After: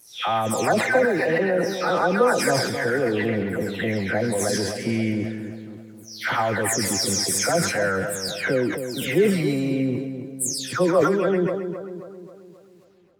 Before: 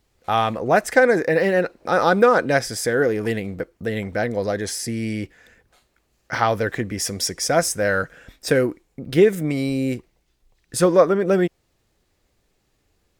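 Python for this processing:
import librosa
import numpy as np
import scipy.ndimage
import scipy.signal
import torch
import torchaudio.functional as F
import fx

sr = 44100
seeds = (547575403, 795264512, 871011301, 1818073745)

p1 = fx.spec_delay(x, sr, highs='early', ms=351)
p2 = scipy.signal.sosfilt(scipy.signal.butter(2, 110.0, 'highpass', fs=sr, output='sos'), p1)
p3 = fx.over_compress(p2, sr, threshold_db=-27.0, ratio=-1.0)
p4 = p2 + F.gain(torch.from_numpy(p3), -1.0).numpy()
p5 = fx.echo_split(p4, sr, split_hz=1200.0, low_ms=267, high_ms=133, feedback_pct=52, wet_db=-8.5)
p6 = fx.sustainer(p5, sr, db_per_s=49.0)
y = F.gain(torch.from_numpy(p6), -5.0).numpy()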